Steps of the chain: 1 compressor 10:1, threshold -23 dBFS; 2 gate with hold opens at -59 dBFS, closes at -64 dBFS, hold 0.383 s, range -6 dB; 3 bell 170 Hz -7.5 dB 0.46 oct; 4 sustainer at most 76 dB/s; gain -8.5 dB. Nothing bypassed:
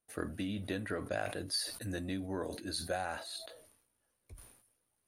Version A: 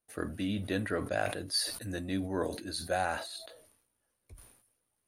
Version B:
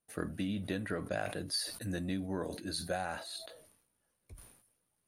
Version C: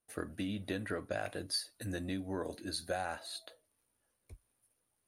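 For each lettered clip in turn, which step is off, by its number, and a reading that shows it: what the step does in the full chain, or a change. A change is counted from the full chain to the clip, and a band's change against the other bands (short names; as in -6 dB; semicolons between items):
1, mean gain reduction 2.5 dB; 3, 125 Hz band +2.0 dB; 4, momentary loudness spread change -5 LU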